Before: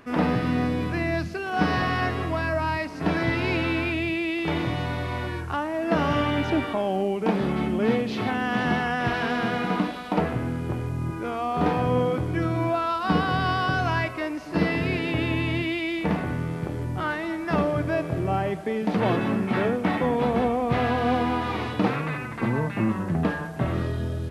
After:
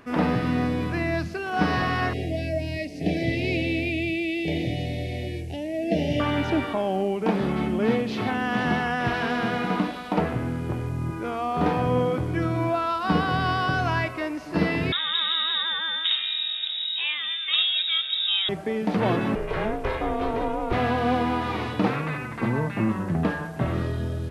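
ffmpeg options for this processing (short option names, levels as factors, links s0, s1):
-filter_complex "[0:a]asettb=1/sr,asplit=3[s0][s1][s2];[s0]atrim=end=2.134[s3];[s1]atrim=start=2.13:end=6.2,asetpts=PTS-STARTPTS,afade=t=in:d=0.004:c=qsin,afade=t=out:st=4.066:d=0.004:c=qsin,asuperstop=centerf=1200:order=8:qfactor=0.92[s4];[s2]atrim=start=6.196[s5];[s3][s4]acrossfade=d=0.004:c1=hsin:c2=qsin[s6];[s6][s5]acrossfade=d=0.004:c1=qsin:c2=hsin,asettb=1/sr,asplit=3[s7][s8][s9];[s7]atrim=end=14.924[s10];[s8]atrim=start=14.92:end=18.49,asetpts=PTS-STARTPTS,afade=t=in:d=0.004:c=qsin,afade=t=out:st=3.566:d=0.004:c=qsin,lowpass=f=3300:t=q:w=0.5098,lowpass=f=3300:t=q:w=0.6013,lowpass=f=3300:t=q:w=0.9,lowpass=f=3300:t=q:w=2.563,afreqshift=-3900[s11];[s9]atrim=start=18.486[s12];[s10][s11]acrossfade=d=0.004:c1=hsin:c2=qsin[s13];[s13][s12]acrossfade=d=0.004:c1=qsin:c2=hsin,asettb=1/sr,asplit=3[s14][s15][s16];[s14]atrim=end=19.354[s17];[s15]atrim=start=19.35:end=20.73,asetpts=PTS-STARTPTS,afade=t=in:d=0.004:c=qsin,afade=t=out:st=1.376:d=0.004:c=qsin,aeval=exprs='val(0)*sin(2*PI*220*n/s)':c=same[s18];[s16]atrim=start=20.726[s19];[s17][s18]acrossfade=d=0.004:c1=hsin:c2=qsin[s20];[s20][s19]acrossfade=d=0.004:c1=qsin:c2=hsin"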